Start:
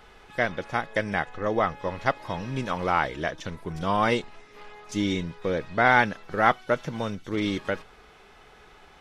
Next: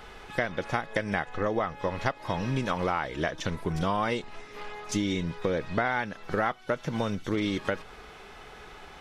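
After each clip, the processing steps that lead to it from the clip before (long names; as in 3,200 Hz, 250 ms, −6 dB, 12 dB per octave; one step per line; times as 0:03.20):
downward compressor 8 to 1, threshold −30 dBFS, peak gain reduction 16 dB
level +5.5 dB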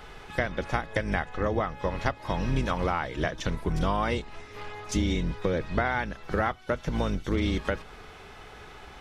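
sub-octave generator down 2 octaves, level +1 dB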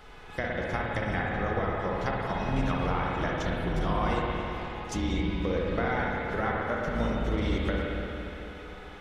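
spring reverb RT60 3.4 s, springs 52/56 ms, chirp 20 ms, DRR −3.5 dB
level −5.5 dB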